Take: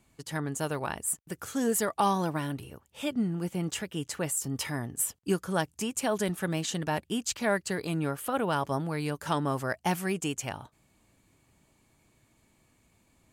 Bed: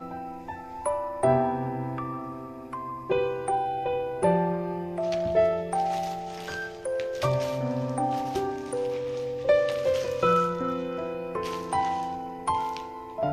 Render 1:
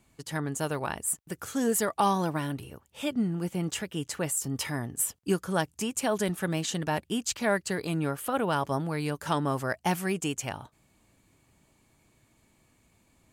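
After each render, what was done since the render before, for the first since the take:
level +1 dB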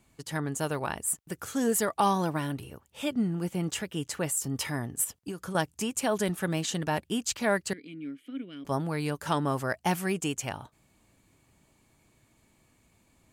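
0:05.04–0:05.55: downward compressor 16 to 1, threshold −31 dBFS
0:07.73–0:08.65: formant filter i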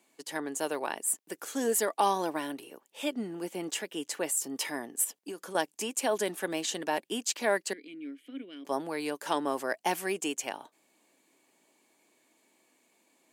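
high-pass filter 280 Hz 24 dB per octave
parametric band 1,300 Hz −6.5 dB 0.3 octaves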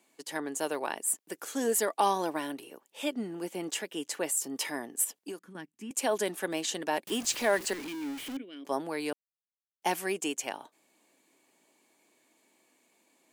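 0:05.39–0:05.91: drawn EQ curve 240 Hz 0 dB, 600 Hz −24 dB, 980 Hz −17 dB, 1,900 Hz −10 dB, 4,600 Hz −21 dB
0:07.07–0:08.37: converter with a step at zero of −36 dBFS
0:09.13–0:09.82: silence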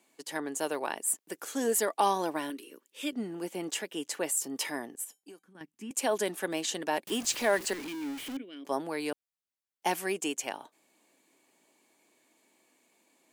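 0:02.50–0:03.13: phaser with its sweep stopped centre 310 Hz, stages 4
0:04.95–0:05.61: tuned comb filter 770 Hz, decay 0.21 s, mix 70%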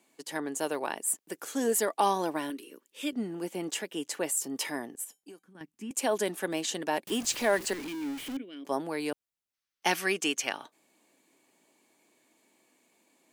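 low-shelf EQ 220 Hz +4.5 dB
0:09.54–0:10.68: gain on a spectral selection 1,100–6,500 Hz +7 dB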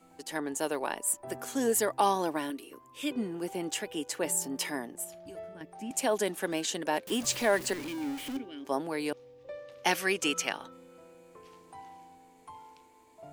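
mix in bed −22 dB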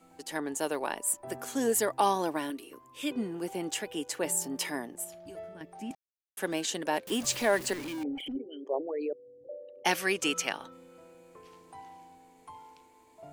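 0:05.95–0:06.37: silence
0:08.03–0:09.85: spectral envelope exaggerated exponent 3

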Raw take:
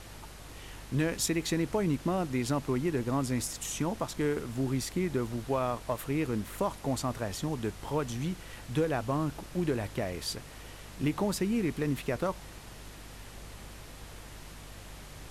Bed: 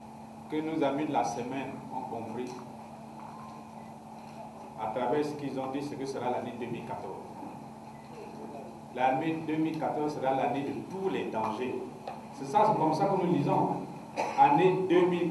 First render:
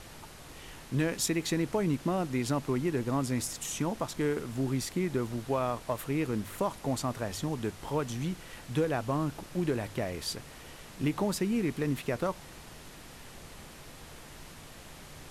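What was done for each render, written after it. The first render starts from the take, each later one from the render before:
hum removal 50 Hz, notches 2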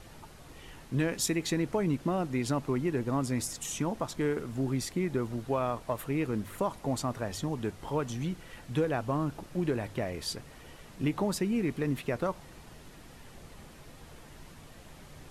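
broadband denoise 6 dB, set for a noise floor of −49 dBFS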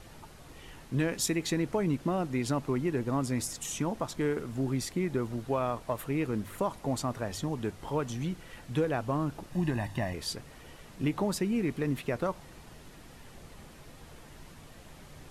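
0:09.52–0:10.14: comb filter 1.1 ms, depth 74%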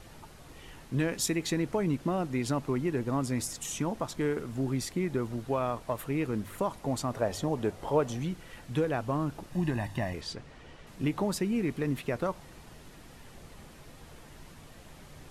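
0:07.13–0:08.20: parametric band 590 Hz +8.5 dB 1.2 octaves
0:10.21–0:10.87: high-frequency loss of the air 82 metres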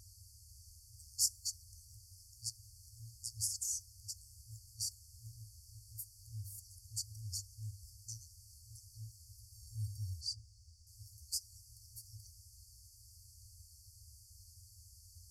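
high-pass filter 78 Hz 12 dB per octave
brick-wall band-stop 110–4,400 Hz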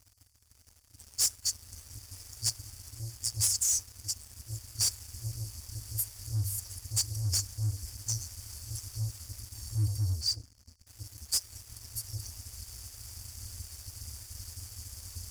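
speech leveller within 5 dB 2 s
leveller curve on the samples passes 3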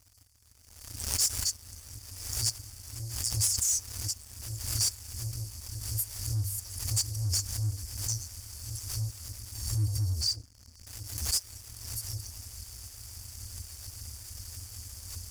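background raised ahead of every attack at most 58 dB per second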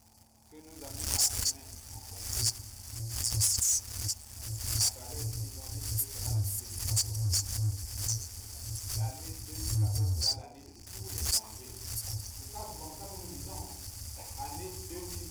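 mix in bed −20.5 dB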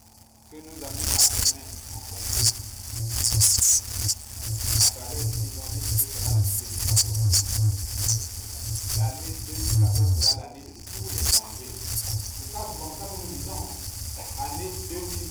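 level +8.5 dB
brickwall limiter −2 dBFS, peak gain reduction 2.5 dB

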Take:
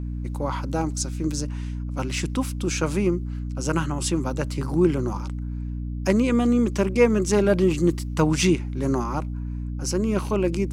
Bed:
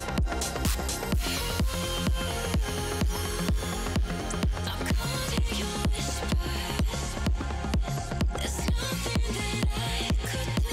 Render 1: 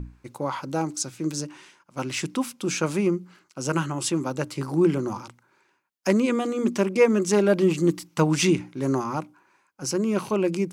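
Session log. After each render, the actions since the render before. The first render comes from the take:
mains-hum notches 60/120/180/240/300 Hz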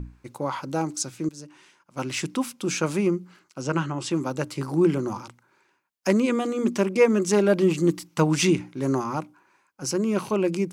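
0:01.29–0:02.02: fade in, from −16.5 dB
0:03.61–0:04.11: high-frequency loss of the air 85 metres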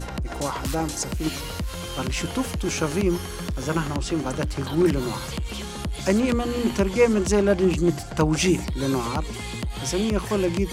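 mix in bed −2.5 dB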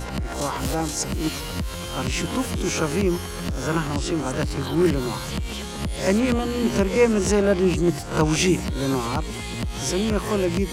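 peak hold with a rise ahead of every peak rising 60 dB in 0.38 s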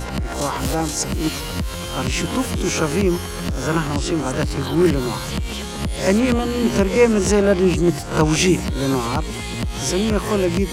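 level +3.5 dB

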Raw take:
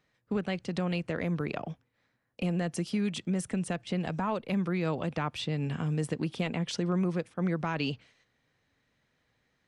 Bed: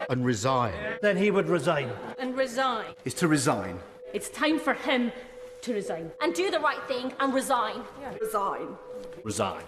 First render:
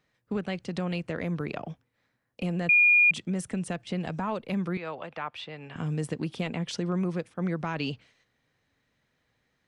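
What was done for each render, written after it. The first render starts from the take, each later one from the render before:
0:02.69–0:03.11: beep over 2,430 Hz −16 dBFS
0:04.77–0:05.76: three-way crossover with the lows and the highs turned down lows −15 dB, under 500 Hz, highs −15 dB, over 3,800 Hz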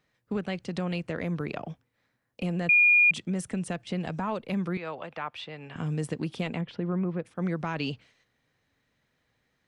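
0:06.61–0:07.25: high-frequency loss of the air 430 metres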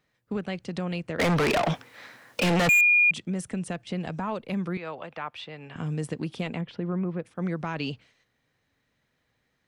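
0:01.19–0:02.81: mid-hump overdrive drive 36 dB, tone 6,400 Hz, clips at −15.5 dBFS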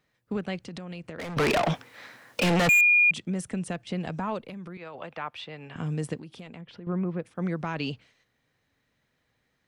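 0:00.59–0:01.37: downward compressor 12 to 1, threshold −34 dBFS
0:04.45–0:04.95: downward compressor 12 to 1, threshold −36 dBFS
0:06.19–0:06.87: downward compressor 2.5 to 1, threshold −45 dBFS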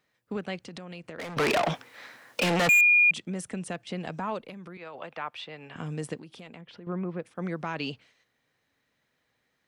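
low-shelf EQ 160 Hz −10 dB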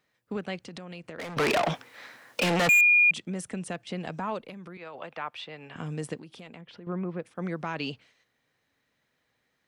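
no processing that can be heard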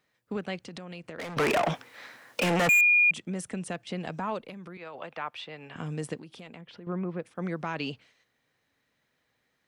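dynamic equaliser 4,200 Hz, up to −6 dB, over −40 dBFS, Q 1.6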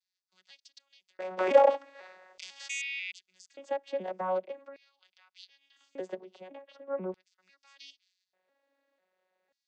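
vocoder with an arpeggio as carrier bare fifth, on F#3, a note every 499 ms
auto-filter high-pass square 0.42 Hz 550–4,800 Hz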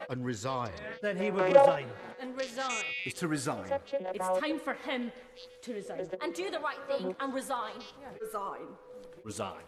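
mix in bed −9 dB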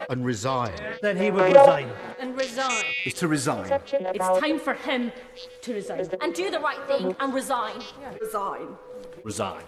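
level +8.5 dB
brickwall limiter −2 dBFS, peak gain reduction 2.5 dB

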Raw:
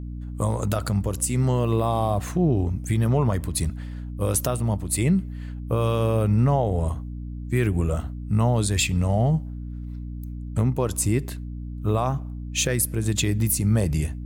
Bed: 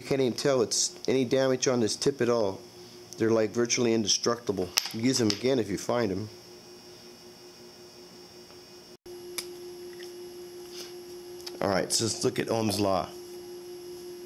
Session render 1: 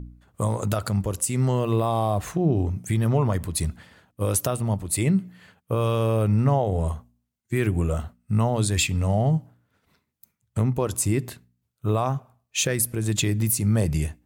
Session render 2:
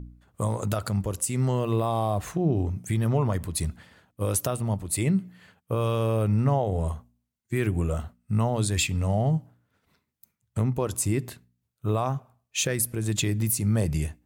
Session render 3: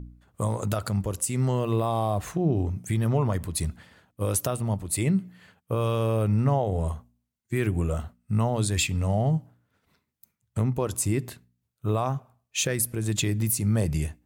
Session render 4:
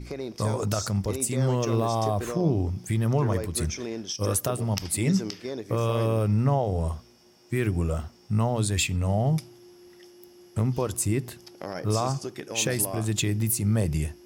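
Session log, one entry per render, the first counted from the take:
hum removal 60 Hz, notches 5
level −2.5 dB
no processing that can be heard
mix in bed −8.5 dB

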